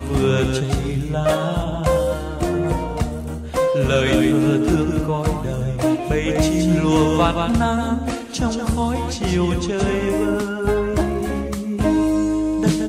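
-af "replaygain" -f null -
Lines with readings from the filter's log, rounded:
track_gain = +0.8 dB
track_peak = 0.335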